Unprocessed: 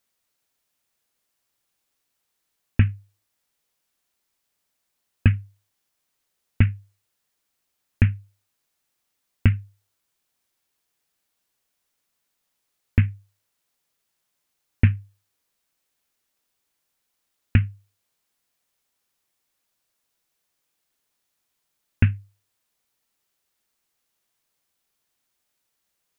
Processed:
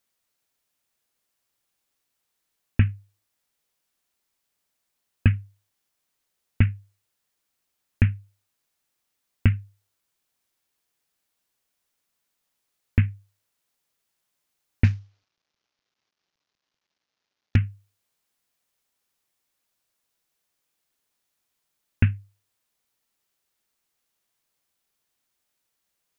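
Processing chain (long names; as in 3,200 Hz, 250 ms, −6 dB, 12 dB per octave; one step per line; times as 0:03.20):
0:14.84–0:17.56: variable-slope delta modulation 32 kbit/s
level −1.5 dB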